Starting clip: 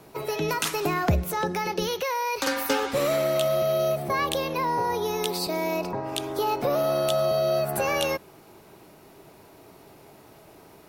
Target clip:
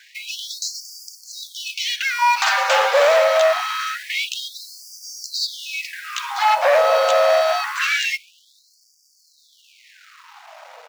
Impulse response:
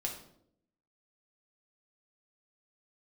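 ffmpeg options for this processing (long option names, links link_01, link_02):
-af "bandreject=frequency=91.84:width_type=h:width=4,bandreject=frequency=183.68:width_type=h:width=4,bandreject=frequency=275.52:width_type=h:width=4,bandreject=frequency=367.36:width_type=h:width=4,bandreject=frequency=459.2:width_type=h:width=4,bandreject=frequency=551.04:width_type=h:width=4,bandreject=frequency=642.88:width_type=h:width=4,bandreject=frequency=734.72:width_type=h:width=4,bandreject=frequency=826.56:width_type=h:width=4,aresample=16000,aeval=exprs='0.266*sin(PI/2*3.55*val(0)/0.266)':channel_layout=same,aresample=44100,acrusher=bits=5:mode=log:mix=0:aa=0.000001,bass=frequency=250:gain=9,treble=frequency=4000:gain=-7,aeval=exprs='sgn(val(0))*max(abs(val(0))-0.0133,0)':channel_layout=same,afftfilt=real='re*gte(b*sr/1024,440*pow(4600/440,0.5+0.5*sin(2*PI*0.25*pts/sr)))':imag='im*gte(b*sr/1024,440*pow(4600/440,0.5+0.5*sin(2*PI*0.25*pts/sr)))':win_size=1024:overlap=0.75,volume=1.5dB"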